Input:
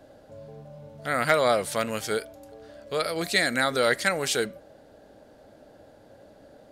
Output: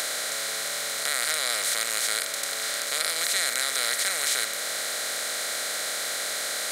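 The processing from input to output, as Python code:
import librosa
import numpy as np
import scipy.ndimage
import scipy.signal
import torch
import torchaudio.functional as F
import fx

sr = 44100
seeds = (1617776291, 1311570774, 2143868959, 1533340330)

y = fx.bin_compress(x, sr, power=0.2)
y = scipy.signal.lfilter([1.0, -0.97], [1.0], y)
y = fx.band_squash(y, sr, depth_pct=40)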